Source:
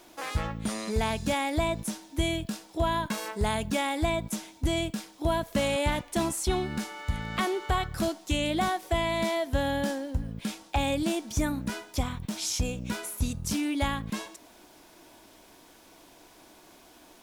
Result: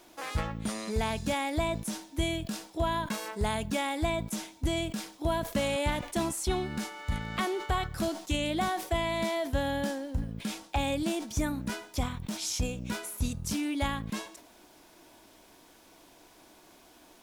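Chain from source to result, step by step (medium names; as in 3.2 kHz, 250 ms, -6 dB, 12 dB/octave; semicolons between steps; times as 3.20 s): decay stretcher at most 120 dB/s; trim -2.5 dB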